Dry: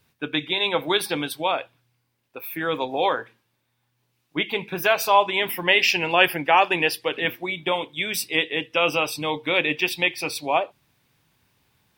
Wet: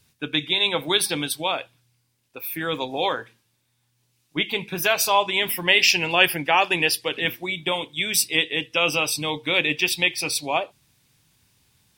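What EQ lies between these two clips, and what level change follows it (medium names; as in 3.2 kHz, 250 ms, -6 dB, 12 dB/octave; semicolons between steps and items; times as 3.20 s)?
bass shelf 270 Hz +9.5 dB; peaking EQ 8.1 kHz +14 dB 2.6 oct; -5.0 dB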